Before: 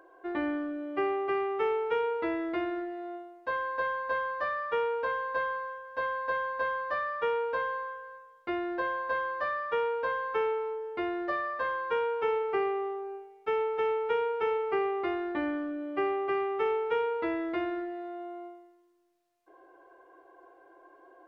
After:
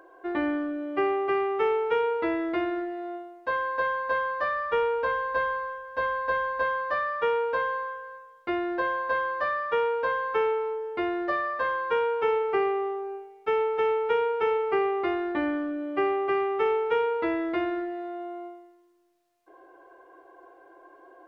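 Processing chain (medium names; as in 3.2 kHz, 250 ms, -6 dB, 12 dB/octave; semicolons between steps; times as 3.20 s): 4.55–6.63 s: bass shelf 81 Hz +10.5 dB; trim +4 dB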